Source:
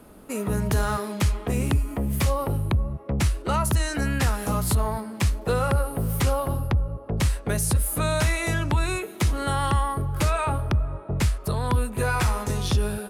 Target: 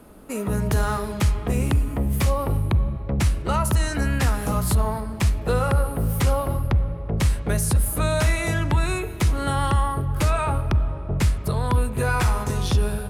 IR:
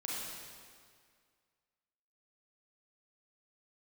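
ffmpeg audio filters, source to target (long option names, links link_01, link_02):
-filter_complex "[0:a]asplit=2[link_01][link_02];[1:a]atrim=start_sample=2205,lowpass=3100,lowshelf=frequency=110:gain=12[link_03];[link_02][link_03]afir=irnorm=-1:irlink=0,volume=-14dB[link_04];[link_01][link_04]amix=inputs=2:normalize=0"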